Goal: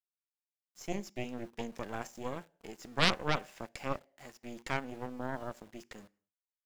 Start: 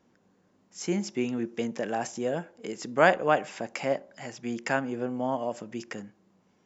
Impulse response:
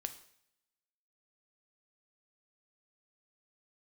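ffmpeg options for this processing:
-filter_complex "[0:a]aeval=exprs='val(0)*gte(abs(val(0)),0.00708)':c=same,asplit=2[s0][s1];[1:a]atrim=start_sample=2205,afade=t=out:st=0.31:d=0.01,atrim=end_sample=14112[s2];[s1][s2]afir=irnorm=-1:irlink=0,volume=0.422[s3];[s0][s3]amix=inputs=2:normalize=0,aeval=exprs='0.75*(cos(1*acos(clip(val(0)/0.75,-1,1)))-cos(1*PI/2))+0.376*(cos(3*acos(clip(val(0)/0.75,-1,1)))-cos(3*PI/2))+0.168*(cos(6*acos(clip(val(0)/0.75,-1,1)))-cos(6*PI/2))':c=same,volume=0.398"

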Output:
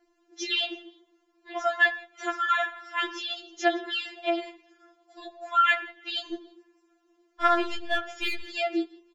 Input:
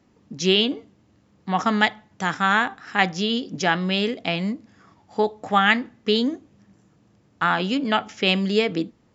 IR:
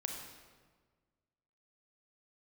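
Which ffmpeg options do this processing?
-filter_complex "[0:a]asettb=1/sr,asplit=3[s0][s1][s2];[s0]atrim=end=6.314[s3];[s1]atrim=start=6.31:end=8.43,asetpts=PTS-STARTPTS,afade=t=in:d=0.004:c=qsin,afade=t=out:st=2.116:d=0.004:c=qsin,aeval=exprs='0.562*(cos(1*acos(clip(val(0)/0.562,-1,1)))-cos(1*PI/2))+0.02*(cos(8*acos(clip(val(0)/0.562,-1,1)))-cos(8*PI/2))':c=same[s4];[s2]atrim=start=8.426[s5];[s3][s4]acrossfade=d=0.004:c1=hsin:c2=qsin[s6];[s6][s5]acrossfade=d=0.004:c1=qsin:c2=hsin,asplit=3[s7][s8][s9];[s8]adelay=163,afreqshift=45,volume=0.0631[s10];[s9]adelay=326,afreqshift=90,volume=0.0221[s11];[s7][s10][s11]amix=inputs=3:normalize=0,asplit=2[s12][s13];[1:a]atrim=start_sample=2205,afade=t=out:st=0.23:d=0.01,atrim=end_sample=10584,lowpass=3700[s14];[s13][s14]afir=irnorm=-1:irlink=0,volume=0.376[s15];[s12][s15]amix=inputs=2:normalize=0,afftfilt=real='re*4*eq(mod(b,16),0)':imag='im*4*eq(mod(b,16),0)':win_size=2048:overlap=0.75,volume=0.596"

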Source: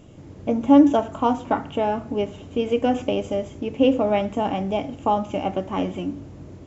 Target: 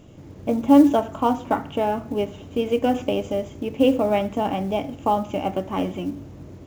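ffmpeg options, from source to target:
-af "aresample=16000,aresample=44100,acrusher=bits=8:mode=log:mix=0:aa=0.000001"

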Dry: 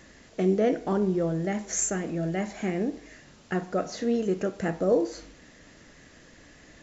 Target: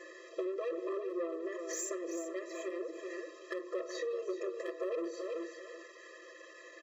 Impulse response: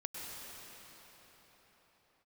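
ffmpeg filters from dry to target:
-filter_complex "[0:a]highshelf=f=2800:g=-10.5,bandreject=f=50:t=h:w=6,bandreject=f=100:t=h:w=6,bandreject=f=150:t=h:w=6,bandreject=f=200:t=h:w=6,bandreject=f=250:t=h:w=6,bandreject=f=300:t=h:w=6,bandreject=f=350:t=h:w=6,aecho=1:1:5.8:0.75,asplit=2[s0][s1];[s1]acompressor=threshold=0.0178:ratio=6,volume=0.75[s2];[s0][s2]amix=inputs=2:normalize=0,asoftclip=type=hard:threshold=0.133,asubboost=boost=11.5:cutoff=80,asoftclip=type=tanh:threshold=0.0562,asplit=2[s3][s4];[s4]aecho=0:1:382|764|1146:0.335|0.0804|0.0193[s5];[s3][s5]amix=inputs=2:normalize=0,acrossover=split=140[s6][s7];[s7]acompressor=threshold=0.0224:ratio=6[s8];[s6][s8]amix=inputs=2:normalize=0,afftfilt=real='re*eq(mod(floor(b*sr/1024/340),2),1)':imag='im*eq(mod(floor(b*sr/1024/340),2),1)':win_size=1024:overlap=0.75,volume=1.12"

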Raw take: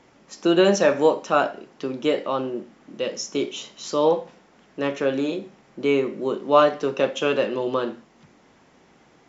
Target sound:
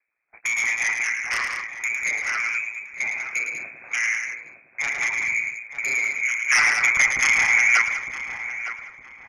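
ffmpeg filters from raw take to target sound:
-filter_complex "[0:a]flanger=delay=0.1:depth=3.4:regen=25:speed=1.1:shape=sinusoidal,aeval=exprs='val(0)*sin(2*PI*57*n/s)':c=same,agate=range=0.0251:threshold=0.00447:ratio=16:detection=peak,lowpass=f=2200:t=q:w=0.5098,lowpass=f=2200:t=q:w=0.6013,lowpass=f=2200:t=q:w=0.9,lowpass=f=2200:t=q:w=2.563,afreqshift=-2600,acrossover=split=500|1000[s0][s1][s2];[s0]acompressor=threshold=0.00126:ratio=4[s3];[s1]acompressor=threshold=0.002:ratio=4[s4];[s2]acompressor=threshold=0.0251:ratio=4[s5];[s3][s4][s5]amix=inputs=3:normalize=0,aeval=exprs='0.1*sin(PI/2*2.82*val(0)/0.1)':c=same,asplit=2[s6][s7];[s7]aecho=0:1:107.9|195.3:0.447|0.398[s8];[s6][s8]amix=inputs=2:normalize=0,asettb=1/sr,asplit=3[s9][s10][s11];[s9]atrim=end=2.494[s12];[s10]atrim=start=2.49:end=3.97,asetpts=PTS-STARTPTS,afade=t=in:d=0.004:c=qsin,afade=t=out:st=1.476:d=0.004:c=qsin,afreqshift=90[s13];[s11]atrim=start=3.966[s14];[s12][s13]acrossfade=d=0.004:c1=hsin:c2=qsin[s15];[s15][s14]acrossfade=d=0.004:c1=qsin:c2=hsin,asettb=1/sr,asplit=3[s16][s17][s18];[s16]atrim=end=6.504[s19];[s17]atrim=start=6.5:end=7.82,asetpts=PTS-STARTPTS,afade=t=in:d=0.004:c=qsin,afade=t=out:st=1.316:d=0.004:c=qsin,acontrast=81[s20];[s18]atrim=start=7.816[s21];[s19][s20]acrossfade=d=0.004:c1=hsin:c2=qsin[s22];[s22][s21]acrossfade=d=0.004:c1=qsin:c2=hsin,asplit=2[s23][s24];[s24]adelay=910,lowpass=f=1900:p=1,volume=0.335,asplit=2[s25][s26];[s26]adelay=910,lowpass=f=1900:p=1,volume=0.34,asplit=2[s27][s28];[s28]adelay=910,lowpass=f=1900:p=1,volume=0.34,asplit=2[s29][s30];[s30]adelay=910,lowpass=f=1900:p=1,volume=0.34[s31];[s25][s27][s29][s31]amix=inputs=4:normalize=0[s32];[s23][s32]amix=inputs=2:normalize=0"

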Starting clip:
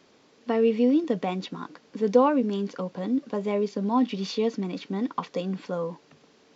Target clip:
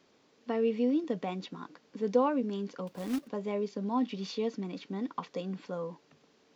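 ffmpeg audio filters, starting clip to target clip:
-filter_complex "[0:a]asettb=1/sr,asplit=3[s0][s1][s2];[s0]atrim=end=2.874[s3];[s1]atrim=start=2.87:end=3.28,asetpts=PTS-STARTPTS,afade=t=in:d=0.004:c=qsin,afade=t=out:st=0.406:d=0.004:c=qsin,acrusher=bits=3:mode=log:mix=0:aa=0.000001[s4];[s2]atrim=start=3.276[s5];[s3][s4]acrossfade=d=0.004:c1=hsin:c2=qsin[s6];[s6][s5]acrossfade=d=0.004:c1=qsin:c2=hsin,volume=0.447"

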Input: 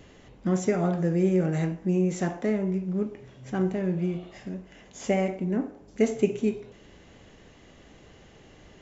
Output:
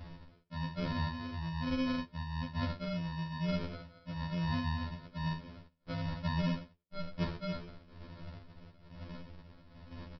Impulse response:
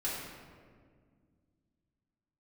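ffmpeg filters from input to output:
-filter_complex "[0:a]bandreject=f=2900:w=12,acrossover=split=880[s0][s1];[s1]adelay=80[s2];[s0][s2]amix=inputs=2:normalize=0,areverse,acompressor=threshold=0.0141:ratio=8,areverse,asetrate=38146,aresample=44100,aphaser=in_gain=1:out_gain=1:delay=1.9:decay=0.46:speed=1.1:type=sinusoidal,agate=range=0.0224:threshold=0.00501:ratio=3:detection=peak,aresample=11025,acrusher=samples=28:mix=1:aa=0.000001,aresample=44100,afftfilt=real='re*2*eq(mod(b,4),0)':imag='im*2*eq(mod(b,4),0)':win_size=2048:overlap=0.75,volume=1.68"

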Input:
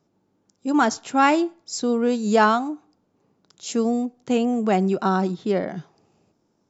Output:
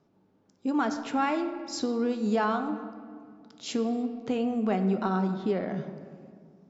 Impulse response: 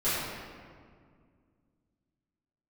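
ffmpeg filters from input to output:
-filter_complex "[0:a]lowpass=4300,acompressor=threshold=0.0316:ratio=2.5,asplit=2[s0][s1];[1:a]atrim=start_sample=2205,asetrate=43218,aresample=44100[s2];[s1][s2]afir=irnorm=-1:irlink=0,volume=0.119[s3];[s0][s3]amix=inputs=2:normalize=0"

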